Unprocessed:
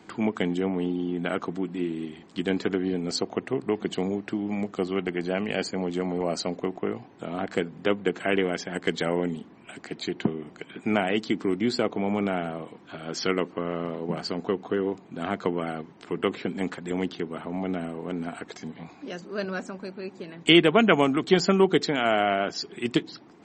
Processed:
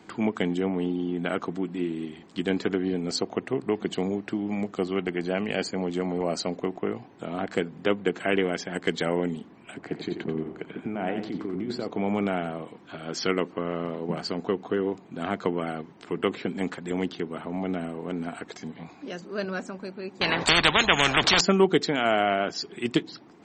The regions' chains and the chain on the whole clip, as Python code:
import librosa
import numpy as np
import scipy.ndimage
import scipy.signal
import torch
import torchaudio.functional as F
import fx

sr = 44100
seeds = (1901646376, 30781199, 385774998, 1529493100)

y = fx.chain(x, sr, fx.lowpass(hz=1100.0, slope=6),
    fx.over_compress(threshold_db=-30.0, ratio=-1.0),
    fx.echo_feedback(ms=89, feedback_pct=33, wet_db=-8.0), at=(9.74, 11.88))
y = fx.chain(y, sr, fx.lowpass(hz=5500.0, slope=24),
    fx.spectral_comp(ratio=10.0), at=(20.21, 21.41))